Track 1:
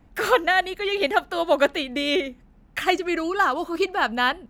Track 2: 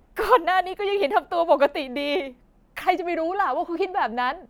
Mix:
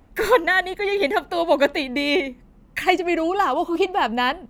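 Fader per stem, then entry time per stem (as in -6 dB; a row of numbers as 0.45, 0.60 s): -1.0, +1.5 dB; 0.00, 0.00 s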